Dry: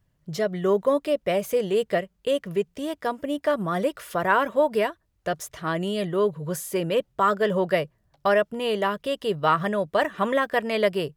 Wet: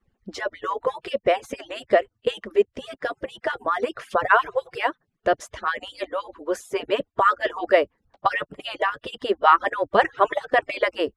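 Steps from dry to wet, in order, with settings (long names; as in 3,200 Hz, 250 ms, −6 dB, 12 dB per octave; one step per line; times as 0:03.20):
harmonic-percussive split with one part muted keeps percussive
Bessel low-pass filter 7,600 Hz, order 4
high-shelf EQ 3,300 Hz −10 dB
level +7.5 dB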